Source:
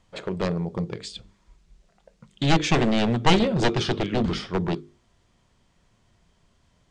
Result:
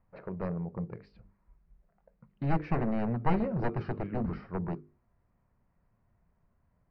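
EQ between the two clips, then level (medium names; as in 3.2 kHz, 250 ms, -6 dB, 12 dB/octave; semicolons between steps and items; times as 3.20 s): boxcar filter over 13 samples; distance through air 280 m; peaking EQ 350 Hz -5 dB 0.86 oct; -6.5 dB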